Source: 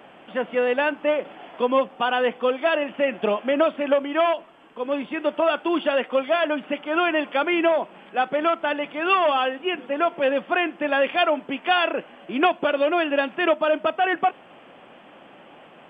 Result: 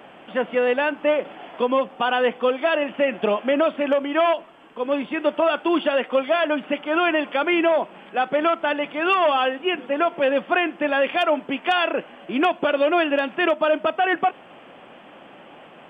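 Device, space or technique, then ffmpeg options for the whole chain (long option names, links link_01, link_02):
clipper into limiter: -af "asoftclip=type=hard:threshold=-9dB,alimiter=limit=-13dB:level=0:latency=1:release=109,volume=2.5dB"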